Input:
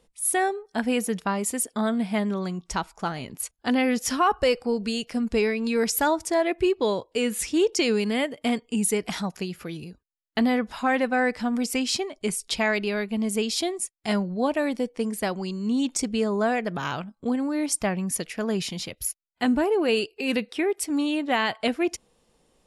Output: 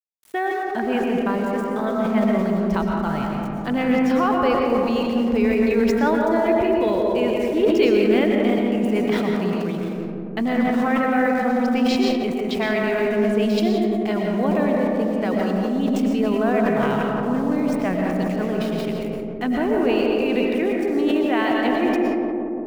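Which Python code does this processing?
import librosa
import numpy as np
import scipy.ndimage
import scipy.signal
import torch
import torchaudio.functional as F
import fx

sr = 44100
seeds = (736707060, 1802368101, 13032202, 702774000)

p1 = scipy.signal.sosfilt(scipy.signal.butter(2, 2700.0, 'lowpass', fs=sr, output='sos'), x)
p2 = fx.level_steps(p1, sr, step_db=18)
p3 = p1 + (p2 * librosa.db_to_amplitude(2.0))
p4 = np.where(np.abs(p3) >= 10.0 ** (-38.5 / 20.0), p3, 0.0)
p5 = fx.echo_filtered(p4, sr, ms=174, feedback_pct=79, hz=1000.0, wet_db=-4.0)
p6 = fx.rev_freeverb(p5, sr, rt60_s=1.7, hf_ratio=0.45, predelay_ms=75, drr_db=0.5)
p7 = fx.sustainer(p6, sr, db_per_s=27.0)
y = p7 * librosa.db_to_amplitude(-3.0)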